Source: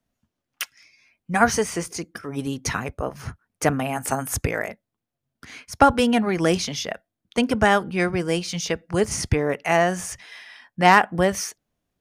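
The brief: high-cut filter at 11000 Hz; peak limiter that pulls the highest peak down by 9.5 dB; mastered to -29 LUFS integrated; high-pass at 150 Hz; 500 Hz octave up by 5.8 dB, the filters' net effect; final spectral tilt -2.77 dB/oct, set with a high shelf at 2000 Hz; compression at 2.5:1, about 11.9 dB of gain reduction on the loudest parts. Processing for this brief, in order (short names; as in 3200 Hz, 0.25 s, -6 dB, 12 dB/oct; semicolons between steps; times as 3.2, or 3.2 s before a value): HPF 150 Hz; LPF 11000 Hz; bell 500 Hz +6.5 dB; high shelf 2000 Hz +8.5 dB; compressor 2.5:1, threshold -24 dBFS; gain -1.5 dB; limiter -16 dBFS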